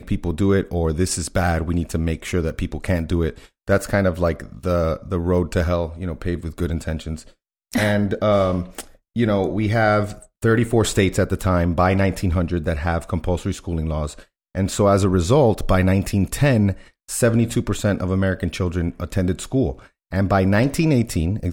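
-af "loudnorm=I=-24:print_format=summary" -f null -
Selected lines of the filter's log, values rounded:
Input Integrated:    -20.9 LUFS
Input True Peak:      -4.5 dBTP
Input LRA:             3.6 LU
Input Threshold:     -31.1 LUFS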